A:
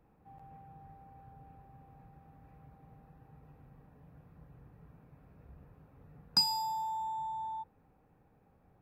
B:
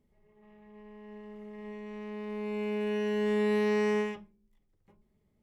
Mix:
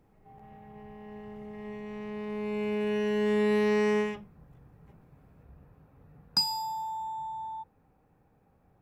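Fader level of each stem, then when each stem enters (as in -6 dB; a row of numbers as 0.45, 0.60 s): +1.0, +2.0 dB; 0.00, 0.00 s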